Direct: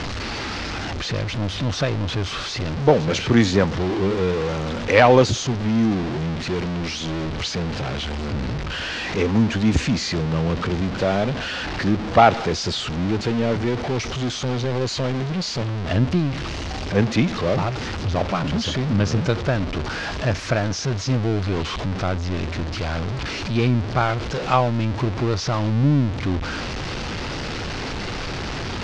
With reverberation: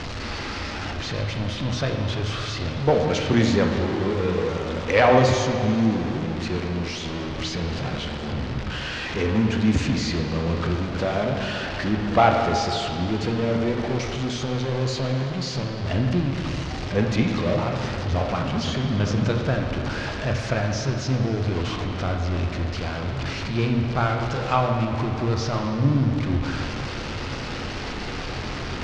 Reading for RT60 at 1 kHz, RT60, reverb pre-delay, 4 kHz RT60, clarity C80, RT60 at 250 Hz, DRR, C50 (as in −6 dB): 2.6 s, 2.6 s, 6 ms, 2.4 s, 4.5 dB, 2.5 s, 1.5 dB, 3.5 dB